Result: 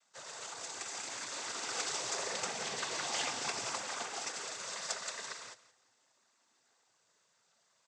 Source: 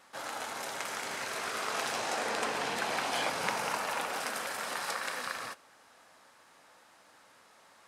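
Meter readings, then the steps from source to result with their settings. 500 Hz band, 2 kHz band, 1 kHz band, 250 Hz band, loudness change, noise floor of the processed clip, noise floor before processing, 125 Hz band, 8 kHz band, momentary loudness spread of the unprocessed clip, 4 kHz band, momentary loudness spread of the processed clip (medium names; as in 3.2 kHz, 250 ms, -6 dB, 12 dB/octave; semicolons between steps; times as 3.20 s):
-7.0 dB, -7.0 dB, -8.0 dB, -8.0 dB, -3.5 dB, -74 dBFS, -61 dBFS, -5.5 dB, +2.5 dB, 6 LU, -1.0 dB, 9 LU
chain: tone controls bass +5 dB, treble +14 dB; flange 0.4 Hz, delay 1.5 ms, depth 1.5 ms, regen -26%; noise-vocoded speech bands 16; feedback delay 172 ms, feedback 29%, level -11.5 dB; upward expansion 1.5:1, over -54 dBFS; trim -2 dB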